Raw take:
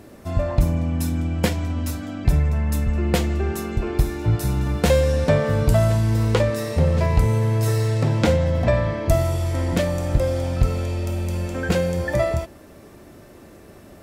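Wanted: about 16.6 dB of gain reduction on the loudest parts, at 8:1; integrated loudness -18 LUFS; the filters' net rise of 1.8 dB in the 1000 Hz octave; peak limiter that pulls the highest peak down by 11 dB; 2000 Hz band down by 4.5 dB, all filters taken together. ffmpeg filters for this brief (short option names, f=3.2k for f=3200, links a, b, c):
-af "equalizer=f=1k:t=o:g=4,equalizer=f=2k:t=o:g=-7,acompressor=threshold=-29dB:ratio=8,volume=18dB,alimiter=limit=-9dB:level=0:latency=1"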